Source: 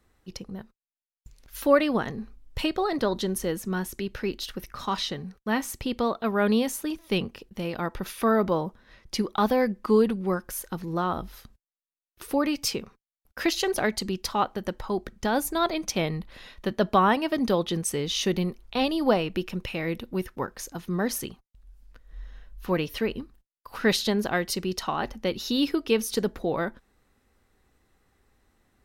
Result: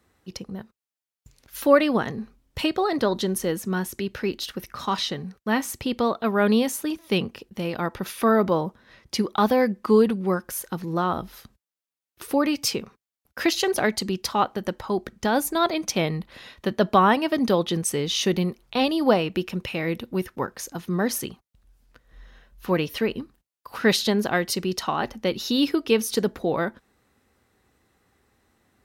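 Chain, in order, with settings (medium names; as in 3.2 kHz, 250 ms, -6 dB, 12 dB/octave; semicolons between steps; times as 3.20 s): high-pass 75 Hz 12 dB/octave; trim +3 dB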